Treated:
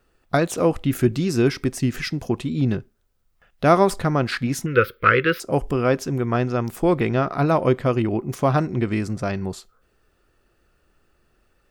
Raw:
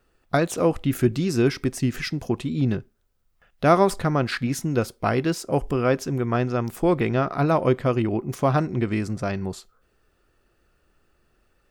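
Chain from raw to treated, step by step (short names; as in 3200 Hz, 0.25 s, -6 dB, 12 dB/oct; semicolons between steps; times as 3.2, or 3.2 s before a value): 4.66–5.4 EQ curve 110 Hz 0 dB, 270 Hz -7 dB, 510 Hz +8 dB, 750 Hz -24 dB, 1300 Hz +13 dB, 2100 Hz +11 dB, 3400 Hz +6 dB, 7600 Hz -26 dB, 15000 Hz +9 dB; gain +1.5 dB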